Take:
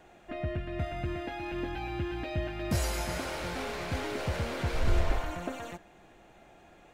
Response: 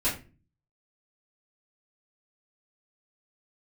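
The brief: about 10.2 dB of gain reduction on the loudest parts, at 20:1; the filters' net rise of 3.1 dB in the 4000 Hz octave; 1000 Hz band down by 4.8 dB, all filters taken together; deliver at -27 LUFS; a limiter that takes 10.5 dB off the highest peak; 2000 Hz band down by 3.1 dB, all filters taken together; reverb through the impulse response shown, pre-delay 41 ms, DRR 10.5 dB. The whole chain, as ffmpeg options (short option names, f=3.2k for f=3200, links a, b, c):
-filter_complex "[0:a]equalizer=f=1k:t=o:g=-6.5,equalizer=f=2k:t=o:g=-3.5,equalizer=f=4k:t=o:g=5.5,acompressor=threshold=-30dB:ratio=20,alimiter=level_in=9dB:limit=-24dB:level=0:latency=1,volume=-9dB,asplit=2[a][b];[1:a]atrim=start_sample=2205,adelay=41[c];[b][c]afir=irnorm=-1:irlink=0,volume=-20dB[d];[a][d]amix=inputs=2:normalize=0,volume=14.5dB"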